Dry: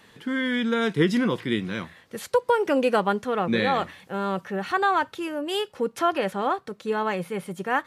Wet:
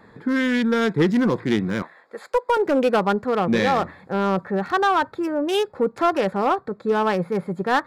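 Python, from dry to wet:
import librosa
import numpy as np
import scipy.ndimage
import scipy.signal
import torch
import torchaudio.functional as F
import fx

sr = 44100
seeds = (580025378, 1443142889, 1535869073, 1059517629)

p1 = fx.wiener(x, sr, points=15)
p2 = fx.highpass(p1, sr, hz=560.0, slope=12, at=(1.82, 2.57))
p3 = fx.rider(p2, sr, range_db=3, speed_s=0.5)
p4 = p2 + (p3 * librosa.db_to_amplitude(0.0))
y = 10.0 ** (-10.5 / 20.0) * np.tanh(p4 / 10.0 ** (-10.5 / 20.0))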